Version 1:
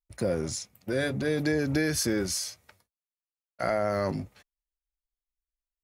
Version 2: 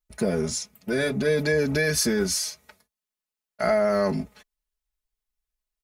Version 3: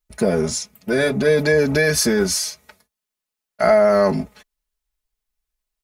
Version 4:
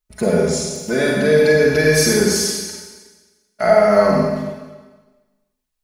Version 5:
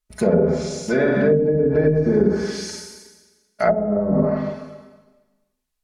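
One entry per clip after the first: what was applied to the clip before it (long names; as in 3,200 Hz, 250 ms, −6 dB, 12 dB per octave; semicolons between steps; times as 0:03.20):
comb filter 4.7 ms, depth 86%; level +2.5 dB
dynamic equaliser 780 Hz, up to +4 dB, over −37 dBFS, Q 0.76; level +4.5 dB
convolution reverb RT60 1.3 s, pre-delay 35 ms, DRR −2 dB; level −1.5 dB
treble cut that deepens with the level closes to 330 Hz, closed at −9 dBFS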